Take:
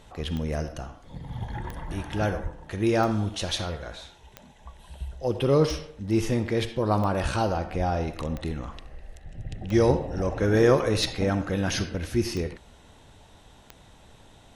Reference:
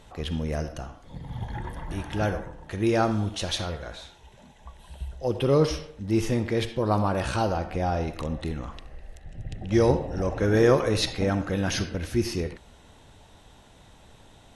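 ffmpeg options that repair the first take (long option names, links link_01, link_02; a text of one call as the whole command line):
ffmpeg -i in.wav -filter_complex "[0:a]adeclick=threshold=4,asplit=3[link_01][link_02][link_03];[link_01]afade=type=out:start_time=2.42:duration=0.02[link_04];[link_02]highpass=frequency=140:width=0.5412,highpass=frequency=140:width=1.3066,afade=type=in:start_time=2.42:duration=0.02,afade=type=out:start_time=2.54:duration=0.02[link_05];[link_03]afade=type=in:start_time=2.54:duration=0.02[link_06];[link_04][link_05][link_06]amix=inputs=3:normalize=0,asplit=3[link_07][link_08][link_09];[link_07]afade=type=out:start_time=7.22:duration=0.02[link_10];[link_08]highpass=frequency=140:width=0.5412,highpass=frequency=140:width=1.3066,afade=type=in:start_time=7.22:duration=0.02,afade=type=out:start_time=7.34:duration=0.02[link_11];[link_09]afade=type=in:start_time=7.34:duration=0.02[link_12];[link_10][link_11][link_12]amix=inputs=3:normalize=0,asplit=3[link_13][link_14][link_15];[link_13]afade=type=out:start_time=7.77:duration=0.02[link_16];[link_14]highpass=frequency=140:width=0.5412,highpass=frequency=140:width=1.3066,afade=type=in:start_time=7.77:duration=0.02,afade=type=out:start_time=7.89:duration=0.02[link_17];[link_15]afade=type=in:start_time=7.89:duration=0.02[link_18];[link_16][link_17][link_18]amix=inputs=3:normalize=0" out.wav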